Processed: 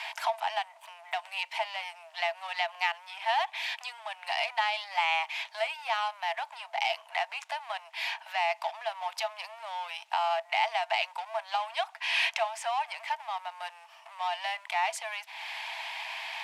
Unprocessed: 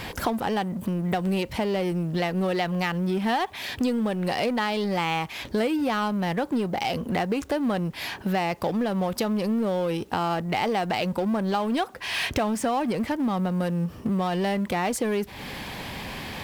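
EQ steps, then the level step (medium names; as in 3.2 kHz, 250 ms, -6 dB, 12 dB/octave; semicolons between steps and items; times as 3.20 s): rippled Chebyshev high-pass 640 Hz, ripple 9 dB; low-pass 9.2 kHz 12 dB/octave; +3.0 dB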